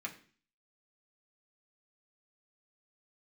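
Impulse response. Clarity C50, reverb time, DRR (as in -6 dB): 13.0 dB, 0.45 s, -2.0 dB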